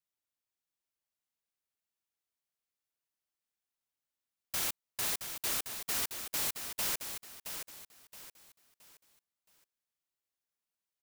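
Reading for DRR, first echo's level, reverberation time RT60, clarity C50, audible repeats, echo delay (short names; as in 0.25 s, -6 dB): none, -8.0 dB, none, none, 3, 0.671 s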